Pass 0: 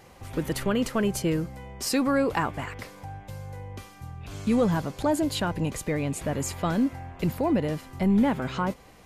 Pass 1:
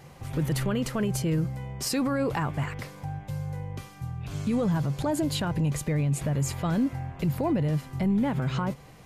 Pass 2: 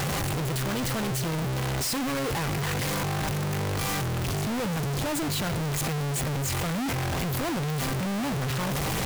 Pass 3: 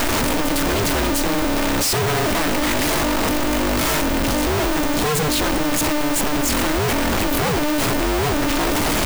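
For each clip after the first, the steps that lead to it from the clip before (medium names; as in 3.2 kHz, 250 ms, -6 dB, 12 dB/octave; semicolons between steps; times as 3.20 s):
peaking EQ 140 Hz +14 dB 0.41 oct; peak limiter -19 dBFS, peak gain reduction 7.5 dB
one-bit comparator
polarity switched at an audio rate 150 Hz; trim +9 dB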